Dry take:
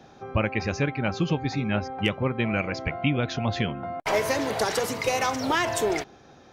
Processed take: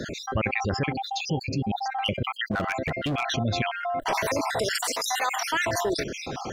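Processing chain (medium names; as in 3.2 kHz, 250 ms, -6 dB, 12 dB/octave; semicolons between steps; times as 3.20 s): random holes in the spectrogram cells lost 55%; 0.92–1.86 s: elliptic band-stop 820–2800 Hz, stop band 40 dB; 2.51–3.37 s: hard clipper -27.5 dBFS, distortion -15 dB; 4.74–5.37 s: high-pass 590 Hz 12 dB/octave; level flattener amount 70%; trim -3 dB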